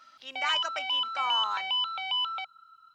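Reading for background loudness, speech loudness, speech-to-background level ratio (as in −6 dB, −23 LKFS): −29.0 LKFS, −33.5 LKFS, −4.5 dB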